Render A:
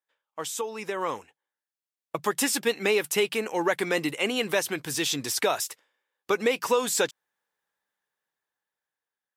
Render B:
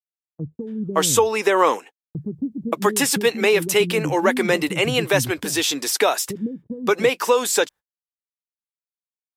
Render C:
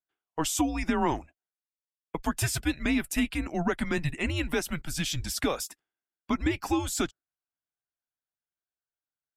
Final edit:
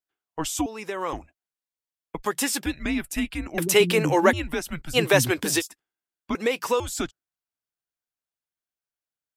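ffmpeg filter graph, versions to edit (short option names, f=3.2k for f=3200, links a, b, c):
-filter_complex "[0:a]asplit=3[a][b][c];[1:a]asplit=2[d][e];[2:a]asplit=6[f][g][h][i][j][k];[f]atrim=end=0.662[l];[a]atrim=start=0.658:end=1.132[m];[g]atrim=start=1.128:end=2.262[n];[b]atrim=start=2.258:end=2.662[o];[h]atrim=start=2.658:end=3.582[p];[d]atrim=start=3.578:end=4.332[q];[i]atrim=start=4.328:end=4.97[r];[e]atrim=start=4.93:end=5.62[s];[j]atrim=start=5.58:end=6.352[t];[c]atrim=start=6.348:end=6.802[u];[k]atrim=start=6.798[v];[l][m]acrossfade=d=0.004:c1=hsin:c2=hsin[w];[w][n]acrossfade=d=0.004:c1=hsin:c2=hsin[x];[x][o]acrossfade=d=0.004:c1=hsin:c2=hsin[y];[y][p]acrossfade=d=0.004:c1=hsin:c2=hsin[z];[z][q]acrossfade=d=0.004:c1=hsin:c2=hsin[aa];[aa][r]acrossfade=d=0.004:c1=hsin:c2=hsin[ab];[ab][s]acrossfade=d=0.04:c1=tri:c2=tri[ac];[ac][t]acrossfade=d=0.04:c1=tri:c2=tri[ad];[ad][u]acrossfade=d=0.004:c1=hsin:c2=hsin[ae];[ae][v]acrossfade=d=0.004:c1=hsin:c2=hsin"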